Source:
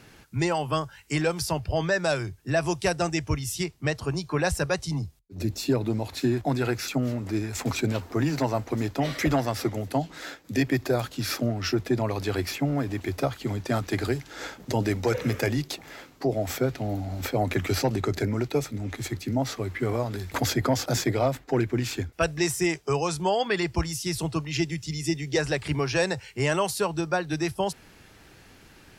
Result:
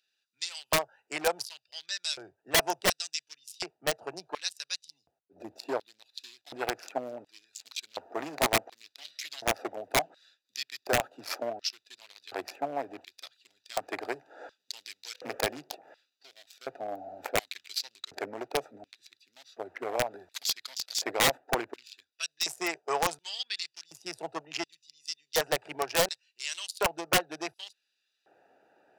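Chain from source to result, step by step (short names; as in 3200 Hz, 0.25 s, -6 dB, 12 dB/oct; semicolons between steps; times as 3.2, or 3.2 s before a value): Wiener smoothing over 41 samples; LFO high-pass square 0.69 Hz 720–3900 Hz; wrapped overs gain 16.5 dB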